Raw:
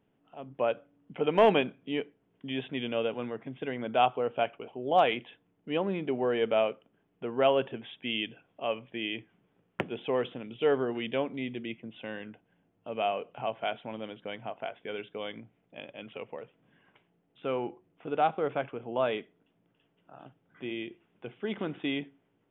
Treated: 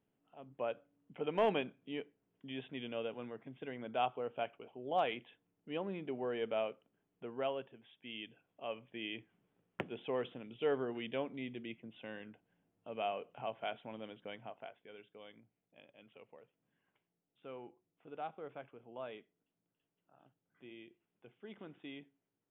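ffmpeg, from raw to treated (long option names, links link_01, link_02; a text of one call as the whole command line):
ffmpeg -i in.wav -af "volume=1.5dB,afade=type=out:start_time=7.24:duration=0.5:silence=0.334965,afade=type=in:start_time=7.74:duration=1.44:silence=0.266073,afade=type=out:start_time=14.3:duration=0.57:silence=0.354813" out.wav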